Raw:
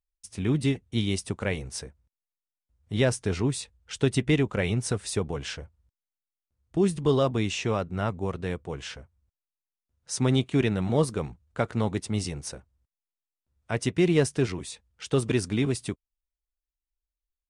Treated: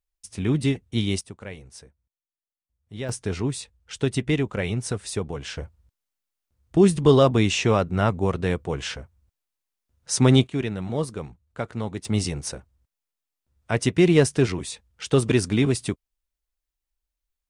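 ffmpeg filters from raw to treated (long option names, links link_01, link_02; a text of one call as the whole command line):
ffmpeg -i in.wav -af "asetnsamples=nb_out_samples=441:pad=0,asendcmd='1.21 volume volume -9dB;3.09 volume volume 0dB;5.57 volume volume 7dB;10.47 volume volume -3dB;12.05 volume volume 5dB',volume=2.5dB" out.wav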